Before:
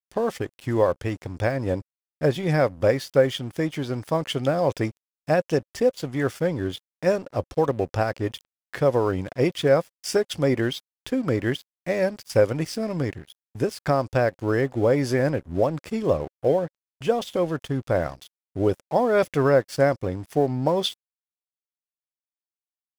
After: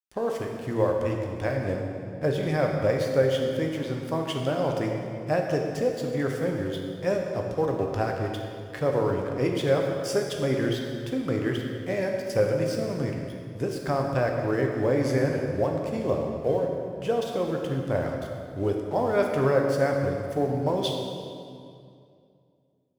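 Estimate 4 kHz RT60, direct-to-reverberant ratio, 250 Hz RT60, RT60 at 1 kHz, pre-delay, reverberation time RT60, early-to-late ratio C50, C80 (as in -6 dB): 1.8 s, 1.0 dB, 2.7 s, 2.3 s, 9 ms, 2.4 s, 2.5 dB, 4.0 dB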